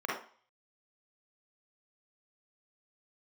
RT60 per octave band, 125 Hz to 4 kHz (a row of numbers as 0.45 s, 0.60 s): 0.30 s, 0.35 s, 0.40 s, 0.45 s, 0.40 s, 0.50 s